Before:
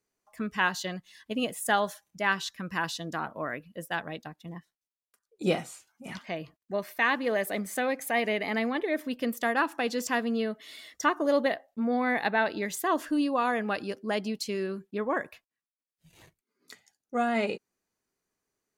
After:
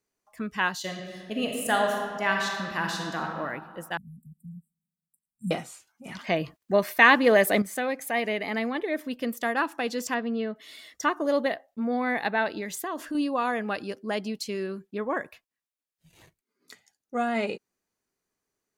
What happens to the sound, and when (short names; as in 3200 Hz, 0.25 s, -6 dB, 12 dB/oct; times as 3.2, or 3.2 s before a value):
0.79–3.28 reverb throw, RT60 2 s, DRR 1 dB
3.97–5.51 brick-wall FIR band-stop 240–7400 Hz
6.19–7.62 gain +9 dB
10.14–10.56 air absorption 190 m
12.58–13.15 compressor, threshold -28 dBFS